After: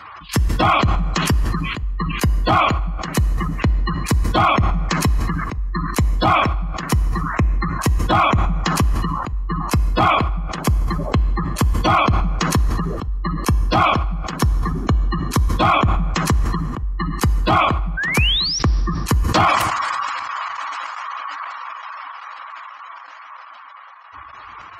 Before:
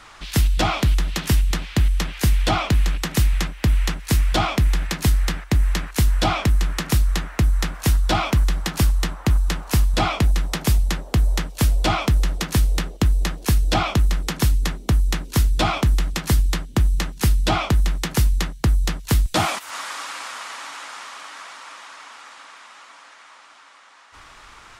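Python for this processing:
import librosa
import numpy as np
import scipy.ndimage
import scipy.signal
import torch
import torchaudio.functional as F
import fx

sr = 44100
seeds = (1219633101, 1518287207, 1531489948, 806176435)

p1 = fx.over_compress(x, sr, threshold_db=-18.0, ratio=-0.5)
p2 = x + F.gain(torch.from_numpy(p1), -1.0).numpy()
p3 = fx.peak_eq(p2, sr, hz=1100.0, db=9.0, octaves=0.29)
p4 = fx.spec_gate(p3, sr, threshold_db=-20, keep='strong')
p5 = scipy.signal.sosfilt(scipy.signal.butter(4, 61.0, 'highpass', fs=sr, output='sos'), p4)
p6 = fx.notch(p5, sr, hz=3600.0, q=10.0)
p7 = np.clip(p6, -10.0 ** (-7.0 / 20.0), 10.0 ** (-7.0 / 20.0))
p8 = fx.step_gate(p7, sr, bpm=156, pattern='xx.xx.xxx.xxx', floor_db=-12.0, edge_ms=4.5)
p9 = fx.spec_paint(p8, sr, seeds[0], shape='rise', start_s=17.97, length_s=0.62, low_hz=1500.0, high_hz=5900.0, level_db=-20.0)
p10 = fx.rev_plate(p9, sr, seeds[1], rt60_s=1.9, hf_ratio=0.6, predelay_ms=0, drr_db=19.0)
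p11 = fx.sustainer(p10, sr, db_per_s=26.0)
y = F.gain(torch.from_numpy(p11), -1.5).numpy()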